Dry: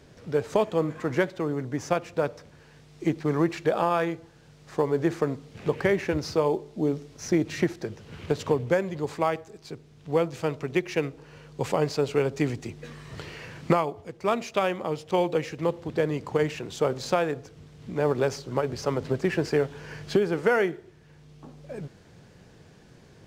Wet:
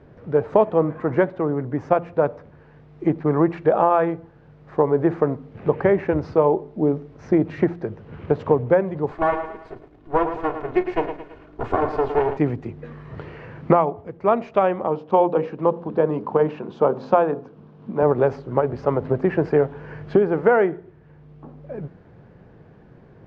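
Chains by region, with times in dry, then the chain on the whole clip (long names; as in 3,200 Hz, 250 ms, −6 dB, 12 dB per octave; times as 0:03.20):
0:09.11–0:12.37: lower of the sound and its delayed copy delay 2.8 ms + double-tracking delay 36 ms −12.5 dB + feedback echo at a low word length 110 ms, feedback 55%, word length 8 bits, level −8.5 dB
0:14.87–0:18.03: loudspeaker in its box 170–6,500 Hz, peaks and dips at 210 Hz +9 dB, 1,000 Hz +5 dB, 2,000 Hz −8 dB + mains-hum notches 60/120/180/240/300/360/420/480 Hz
whole clip: low-pass filter 1,400 Hz 12 dB per octave; dynamic equaliser 770 Hz, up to +4 dB, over −36 dBFS, Q 1.2; hum removal 86.03 Hz, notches 3; level +5 dB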